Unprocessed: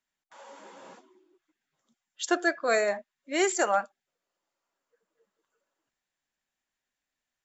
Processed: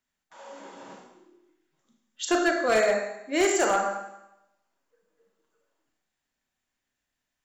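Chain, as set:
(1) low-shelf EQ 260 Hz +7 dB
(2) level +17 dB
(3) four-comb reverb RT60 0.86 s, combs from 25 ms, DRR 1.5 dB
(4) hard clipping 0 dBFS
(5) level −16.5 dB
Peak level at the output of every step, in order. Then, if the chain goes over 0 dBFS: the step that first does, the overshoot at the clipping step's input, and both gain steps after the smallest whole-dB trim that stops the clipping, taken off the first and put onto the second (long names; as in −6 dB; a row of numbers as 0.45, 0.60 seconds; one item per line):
−12.0, +5.0, +7.0, 0.0, −16.5 dBFS
step 2, 7.0 dB
step 2 +10 dB, step 5 −9.5 dB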